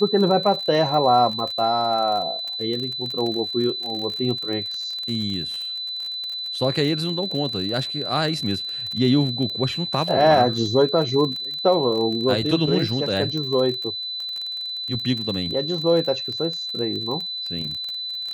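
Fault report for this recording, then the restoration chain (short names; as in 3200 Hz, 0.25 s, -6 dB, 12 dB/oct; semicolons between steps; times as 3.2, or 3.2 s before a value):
crackle 31/s -27 dBFS
tone 4000 Hz -27 dBFS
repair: de-click; notch 4000 Hz, Q 30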